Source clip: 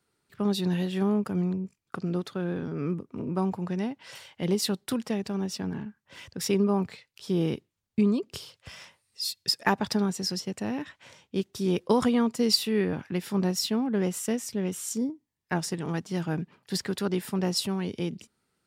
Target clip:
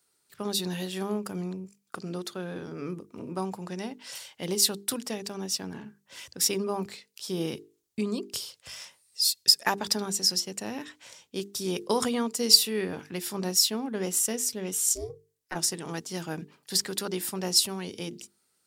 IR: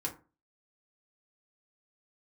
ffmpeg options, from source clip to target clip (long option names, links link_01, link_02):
-filter_complex "[0:a]asplit=3[link_01][link_02][link_03];[link_01]afade=type=out:start_time=14.94:duration=0.02[link_04];[link_02]aeval=exprs='val(0)*sin(2*PI*170*n/s)':channel_layout=same,afade=type=in:start_time=14.94:duration=0.02,afade=type=out:start_time=15.54:duration=0.02[link_05];[link_03]afade=type=in:start_time=15.54:duration=0.02[link_06];[link_04][link_05][link_06]amix=inputs=3:normalize=0,bass=frequency=250:gain=-7,treble=frequency=4000:gain=12,bandreject=frequency=50:width_type=h:width=6,bandreject=frequency=100:width_type=h:width=6,bandreject=frequency=150:width_type=h:width=6,bandreject=frequency=200:width_type=h:width=6,bandreject=frequency=250:width_type=h:width=6,bandreject=frequency=300:width_type=h:width=6,bandreject=frequency=350:width_type=h:width=6,bandreject=frequency=400:width_type=h:width=6,bandreject=frequency=450:width_type=h:width=6,volume=-1.5dB"